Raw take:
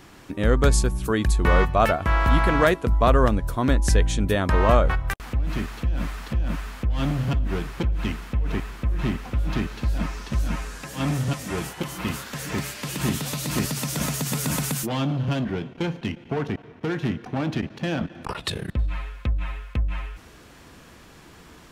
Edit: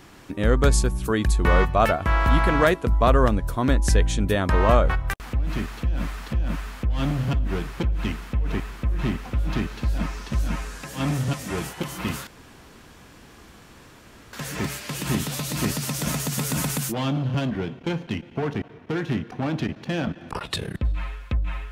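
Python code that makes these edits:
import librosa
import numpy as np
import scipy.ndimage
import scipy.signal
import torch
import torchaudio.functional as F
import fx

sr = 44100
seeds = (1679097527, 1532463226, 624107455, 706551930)

y = fx.edit(x, sr, fx.insert_room_tone(at_s=12.27, length_s=2.06), tone=tone)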